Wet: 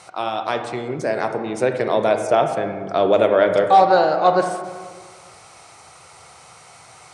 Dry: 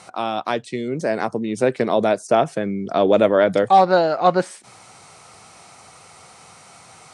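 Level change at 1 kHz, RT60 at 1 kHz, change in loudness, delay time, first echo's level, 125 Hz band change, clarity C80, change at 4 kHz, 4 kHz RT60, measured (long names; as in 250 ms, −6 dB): +1.5 dB, 1.6 s, +0.5 dB, no echo audible, no echo audible, −2.5 dB, 12.0 dB, +0.5 dB, 0.90 s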